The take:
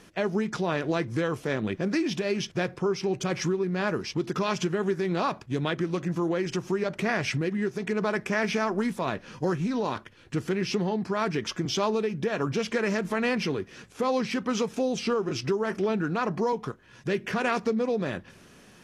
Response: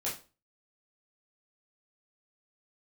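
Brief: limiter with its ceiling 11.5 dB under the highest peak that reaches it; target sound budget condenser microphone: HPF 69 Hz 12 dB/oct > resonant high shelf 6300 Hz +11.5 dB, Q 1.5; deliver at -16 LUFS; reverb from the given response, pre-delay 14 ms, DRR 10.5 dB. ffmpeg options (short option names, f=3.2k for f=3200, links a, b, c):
-filter_complex "[0:a]alimiter=level_in=1.5dB:limit=-24dB:level=0:latency=1,volume=-1.5dB,asplit=2[a][b];[1:a]atrim=start_sample=2205,adelay=14[c];[b][c]afir=irnorm=-1:irlink=0,volume=-14.5dB[d];[a][d]amix=inputs=2:normalize=0,highpass=69,highshelf=f=6.3k:t=q:w=1.5:g=11.5,volume=18dB"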